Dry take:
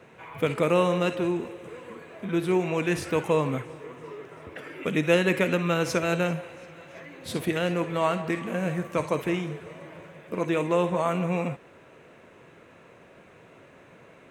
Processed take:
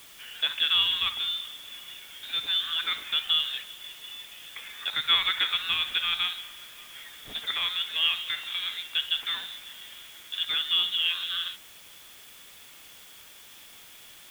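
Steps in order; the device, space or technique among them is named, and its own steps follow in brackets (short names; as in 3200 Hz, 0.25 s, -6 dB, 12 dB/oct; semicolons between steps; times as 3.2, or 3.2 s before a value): scrambled radio voice (BPF 400–2900 Hz; inverted band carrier 3900 Hz; white noise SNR 20 dB)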